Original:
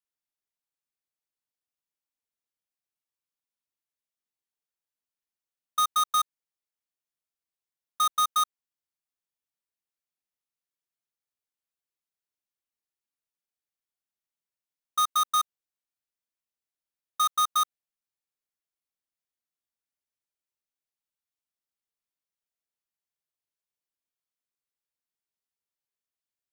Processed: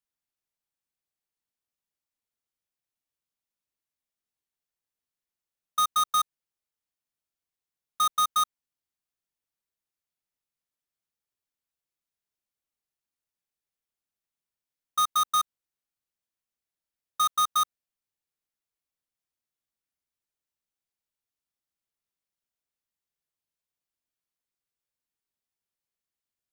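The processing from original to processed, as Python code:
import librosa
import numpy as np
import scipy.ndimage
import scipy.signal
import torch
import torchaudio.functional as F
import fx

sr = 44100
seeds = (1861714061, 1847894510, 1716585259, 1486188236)

y = fx.low_shelf(x, sr, hz=220.0, db=5.5)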